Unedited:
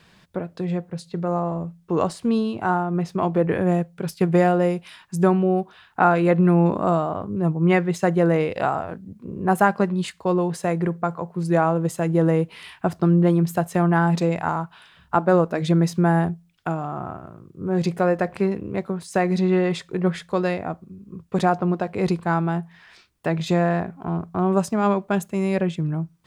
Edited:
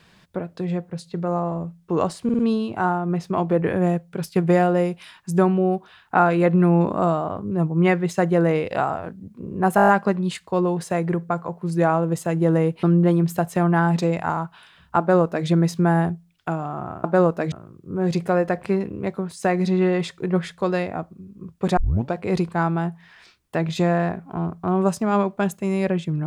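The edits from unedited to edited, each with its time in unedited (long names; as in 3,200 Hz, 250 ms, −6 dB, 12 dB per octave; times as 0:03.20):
0:02.24: stutter 0.05 s, 4 plays
0:09.61: stutter 0.02 s, 7 plays
0:12.56–0:13.02: remove
0:15.18–0:15.66: duplicate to 0:17.23
0:21.48: tape start 0.36 s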